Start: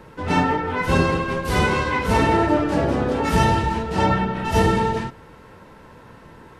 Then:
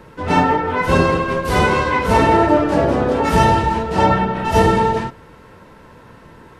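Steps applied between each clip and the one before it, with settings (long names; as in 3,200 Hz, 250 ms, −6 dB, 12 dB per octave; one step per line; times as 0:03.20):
notch filter 810 Hz, Q 18
dynamic equaliser 710 Hz, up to +5 dB, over −33 dBFS, Q 0.79
level +2 dB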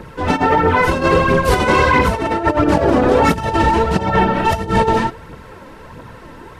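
phase shifter 1.5 Hz, delay 4 ms, feedback 46%
compressor whose output falls as the input rises −16 dBFS, ratio −0.5
level +2.5 dB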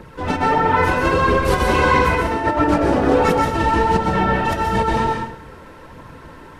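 dense smooth reverb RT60 0.62 s, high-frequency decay 0.8×, pre-delay 115 ms, DRR 1.5 dB
level −5 dB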